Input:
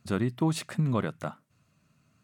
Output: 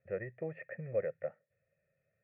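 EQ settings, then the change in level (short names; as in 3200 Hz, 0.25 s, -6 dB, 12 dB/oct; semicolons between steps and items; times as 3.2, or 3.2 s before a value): vocal tract filter e; fixed phaser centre 1000 Hz, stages 6; +6.0 dB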